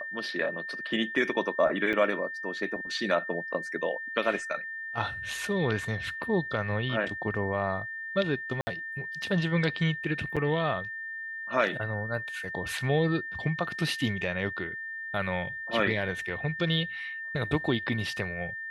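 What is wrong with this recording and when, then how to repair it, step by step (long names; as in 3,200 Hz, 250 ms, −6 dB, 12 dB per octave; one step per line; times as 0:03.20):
whistle 1,800 Hz −35 dBFS
0:01.93: drop-out 4.7 ms
0:08.61–0:08.67: drop-out 60 ms
0:10.36–0:10.37: drop-out 6.1 ms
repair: notch filter 1,800 Hz, Q 30
repair the gap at 0:01.93, 4.7 ms
repair the gap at 0:08.61, 60 ms
repair the gap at 0:10.36, 6.1 ms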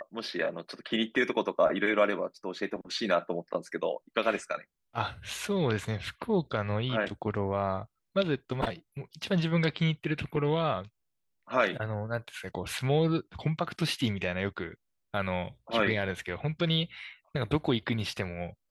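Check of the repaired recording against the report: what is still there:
none of them is left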